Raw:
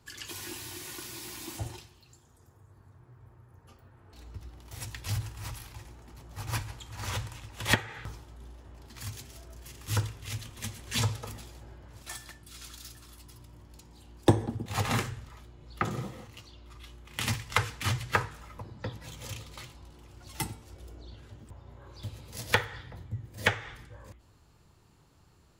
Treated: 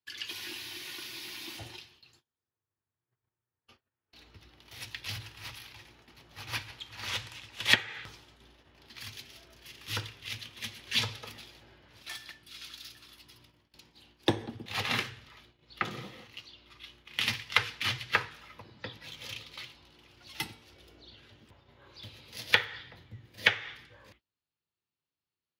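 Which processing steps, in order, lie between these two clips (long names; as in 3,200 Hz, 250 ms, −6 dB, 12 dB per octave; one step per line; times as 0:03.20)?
meter weighting curve D
noise gate −54 dBFS, range −28 dB
parametric band 7,700 Hz −13.5 dB 0.68 octaves, from 0:07.09 −7 dB, from 0:08.42 −13.5 dB
level −4.5 dB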